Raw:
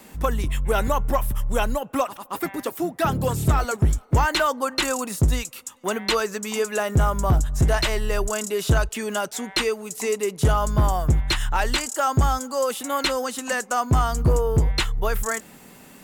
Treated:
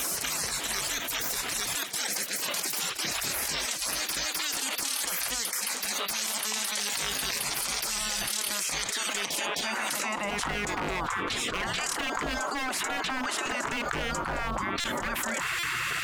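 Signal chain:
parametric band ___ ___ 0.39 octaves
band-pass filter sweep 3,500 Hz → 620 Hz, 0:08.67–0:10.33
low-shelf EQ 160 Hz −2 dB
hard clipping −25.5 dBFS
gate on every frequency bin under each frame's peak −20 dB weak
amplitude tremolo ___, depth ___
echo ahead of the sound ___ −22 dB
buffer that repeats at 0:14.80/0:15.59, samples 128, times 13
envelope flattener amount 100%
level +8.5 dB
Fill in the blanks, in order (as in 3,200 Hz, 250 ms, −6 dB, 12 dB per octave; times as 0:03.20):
96 Hz, −13 dB, 0.71 Hz, 45%, 258 ms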